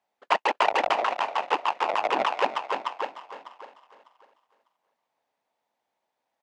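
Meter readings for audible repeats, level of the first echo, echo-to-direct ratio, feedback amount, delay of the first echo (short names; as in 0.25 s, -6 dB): 3, -15.5 dB, -14.5 dB, 44%, 0.322 s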